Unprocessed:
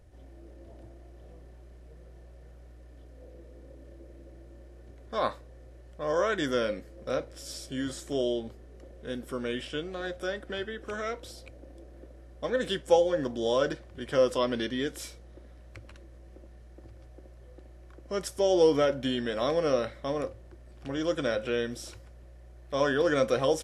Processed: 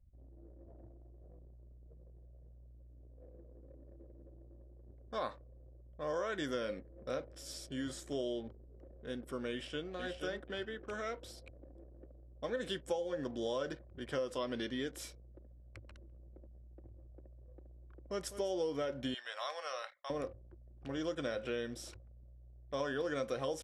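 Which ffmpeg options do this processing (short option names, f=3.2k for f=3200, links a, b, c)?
-filter_complex "[0:a]asplit=2[a][b];[b]afade=t=in:st=9.51:d=0.01,afade=t=out:st=9.91:d=0.01,aecho=0:1:480|960|1440:0.530884|0.106177|0.0212354[c];[a][c]amix=inputs=2:normalize=0,asplit=3[d][e][f];[d]afade=t=out:st=15.82:d=0.02[g];[e]aecho=1:1:202:0.211,afade=t=in:st=15.82:d=0.02,afade=t=out:st=18.53:d=0.02[h];[f]afade=t=in:st=18.53:d=0.02[i];[g][h][i]amix=inputs=3:normalize=0,asettb=1/sr,asplit=3[j][k][l];[j]atrim=end=19.144[m];[k]atrim=start=19.14:end=20.1,asetpts=PTS-STARTPTS,afade=t=in:d=0.004:c=qsin,afade=t=out:st=0.956:d=0.004:c=qsin,highpass=f=770:w=0.5412,highpass=f=770:w=1.3066[n];[l]atrim=start=20.096[o];[m][n]acrossfade=d=0.004:c1=hsin:c2=qsin[p];[p][o]acrossfade=d=0.004:c1=qsin:c2=hsin,anlmdn=0.00631,acompressor=threshold=-27dB:ratio=6,volume=-6dB"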